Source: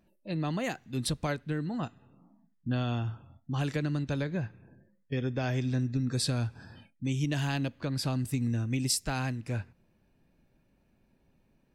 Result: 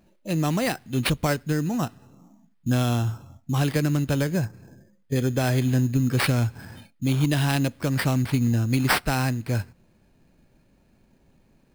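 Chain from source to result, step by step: 4.44–5.16 s: low-pass that closes with the level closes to 1.3 kHz, closed at -38.5 dBFS; sample-rate reducer 6.7 kHz, jitter 0%; trim +8 dB

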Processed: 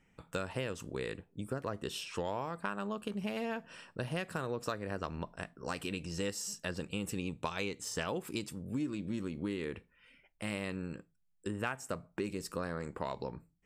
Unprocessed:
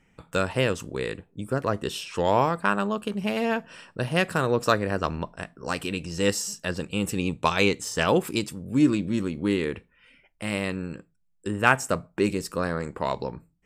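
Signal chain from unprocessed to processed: compression 6:1, threshold -27 dBFS, peak gain reduction 14 dB; trim -6 dB

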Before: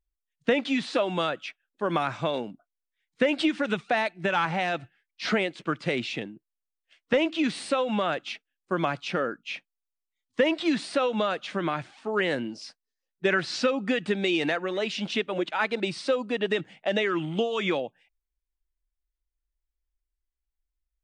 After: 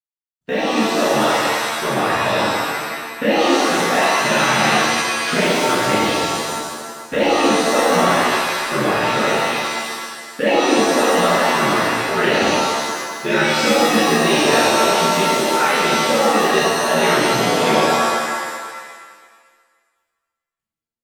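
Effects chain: companding laws mixed up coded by A; level rider gain up to 11 dB; ring modulator 35 Hz; pitch-shifted reverb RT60 1.6 s, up +7 st, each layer -2 dB, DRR -11 dB; trim -9 dB

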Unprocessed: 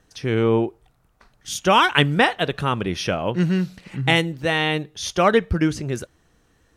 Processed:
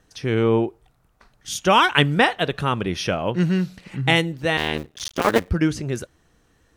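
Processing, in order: 4.57–5.49 s: cycle switcher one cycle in 2, muted

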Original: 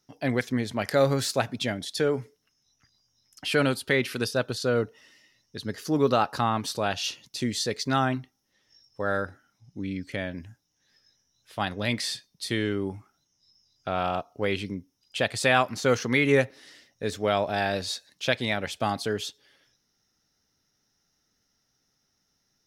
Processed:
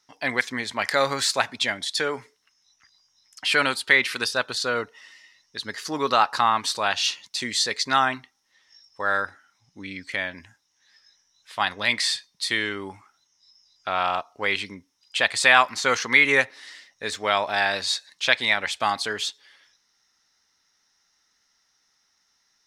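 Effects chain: graphic EQ 125/1000/2000/4000/8000 Hz -6/+12/+11/+9/+11 dB; trim -6 dB

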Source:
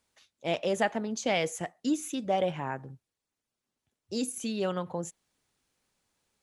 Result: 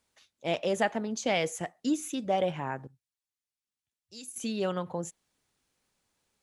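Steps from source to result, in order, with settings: 2.87–4.36 s: amplifier tone stack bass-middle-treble 5-5-5

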